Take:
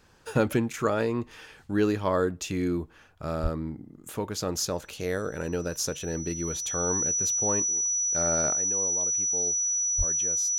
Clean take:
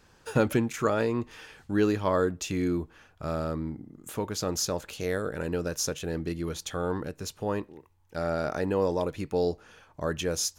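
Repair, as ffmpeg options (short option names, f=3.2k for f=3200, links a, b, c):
-filter_complex "[0:a]bandreject=f=5.9k:w=30,asplit=3[a][b][c];[a]afade=t=out:st=3.42:d=0.02[d];[b]highpass=f=140:w=0.5412,highpass=f=140:w=1.3066,afade=t=in:st=3.42:d=0.02,afade=t=out:st=3.54:d=0.02[e];[c]afade=t=in:st=3.54:d=0.02[f];[d][e][f]amix=inputs=3:normalize=0,asplit=3[g][h][i];[g]afade=t=out:st=9.97:d=0.02[j];[h]highpass=f=140:w=0.5412,highpass=f=140:w=1.3066,afade=t=in:st=9.97:d=0.02,afade=t=out:st=10.09:d=0.02[k];[i]afade=t=in:st=10.09:d=0.02[l];[j][k][l]amix=inputs=3:normalize=0,asetnsamples=n=441:p=0,asendcmd='8.54 volume volume 11.5dB',volume=0dB"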